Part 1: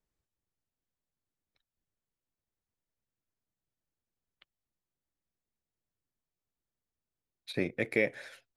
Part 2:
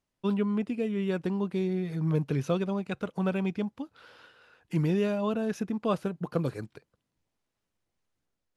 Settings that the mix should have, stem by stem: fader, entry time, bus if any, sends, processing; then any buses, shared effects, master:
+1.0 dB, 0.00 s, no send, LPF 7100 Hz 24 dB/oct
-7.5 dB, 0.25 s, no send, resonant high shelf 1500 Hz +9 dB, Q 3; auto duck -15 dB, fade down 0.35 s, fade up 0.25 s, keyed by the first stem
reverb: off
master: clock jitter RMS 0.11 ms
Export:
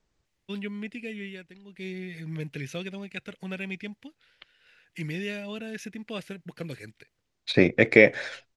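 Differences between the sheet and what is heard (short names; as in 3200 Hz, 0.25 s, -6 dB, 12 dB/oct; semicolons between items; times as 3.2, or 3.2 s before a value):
stem 1 +1.0 dB -> +12.5 dB; master: missing clock jitter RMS 0.11 ms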